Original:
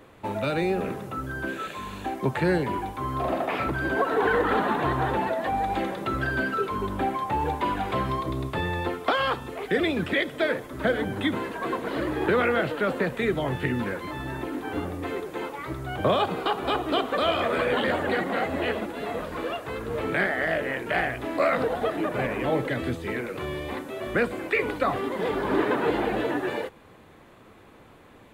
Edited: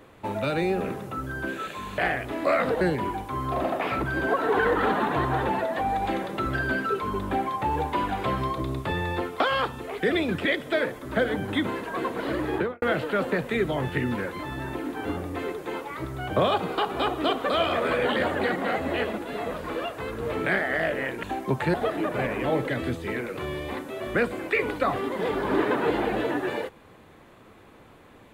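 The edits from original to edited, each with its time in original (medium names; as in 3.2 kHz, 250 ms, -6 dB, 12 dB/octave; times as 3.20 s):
1.98–2.49 s: swap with 20.91–21.74 s
12.19–12.50 s: studio fade out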